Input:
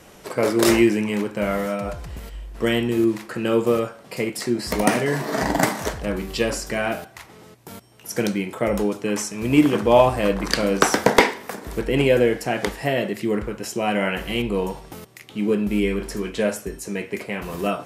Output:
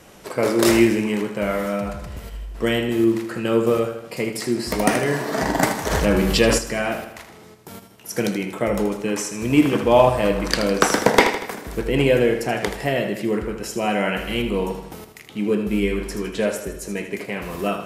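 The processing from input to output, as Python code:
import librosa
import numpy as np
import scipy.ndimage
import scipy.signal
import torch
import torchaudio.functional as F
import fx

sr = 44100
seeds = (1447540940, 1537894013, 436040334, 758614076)

p1 = x + fx.echo_feedback(x, sr, ms=79, feedback_pct=53, wet_db=-9.5, dry=0)
y = fx.env_flatten(p1, sr, amount_pct=50, at=(5.9, 6.57), fade=0.02)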